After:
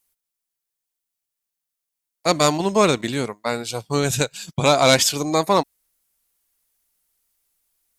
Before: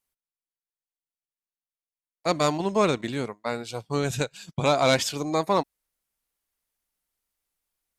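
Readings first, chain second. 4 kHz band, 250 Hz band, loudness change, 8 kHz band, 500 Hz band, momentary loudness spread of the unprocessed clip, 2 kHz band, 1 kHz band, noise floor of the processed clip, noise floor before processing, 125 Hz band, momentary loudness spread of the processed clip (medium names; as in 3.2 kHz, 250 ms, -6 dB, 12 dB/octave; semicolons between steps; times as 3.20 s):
+8.5 dB, +5.0 dB, +6.0 dB, +11.0 dB, +5.0 dB, 10 LU, +6.0 dB, +5.5 dB, -83 dBFS, under -85 dBFS, +5.0 dB, 11 LU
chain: treble shelf 5 kHz +9 dB; trim +5 dB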